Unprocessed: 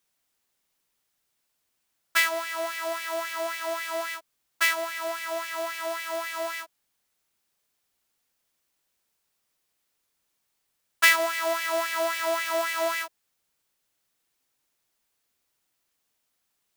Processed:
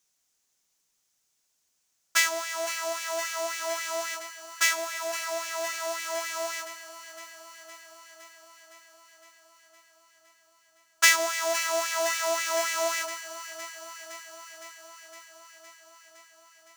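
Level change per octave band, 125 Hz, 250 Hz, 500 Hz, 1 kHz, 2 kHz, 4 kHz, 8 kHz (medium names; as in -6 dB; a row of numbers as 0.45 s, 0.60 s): no reading, -4.0 dB, -1.5 dB, -1.5 dB, -1.5 dB, +1.5 dB, +7.0 dB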